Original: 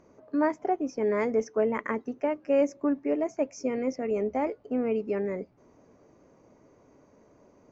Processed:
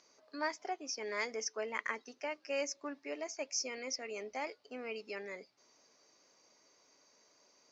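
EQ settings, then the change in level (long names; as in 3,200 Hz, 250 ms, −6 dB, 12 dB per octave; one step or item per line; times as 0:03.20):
resonant band-pass 4,700 Hz, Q 3
+15.0 dB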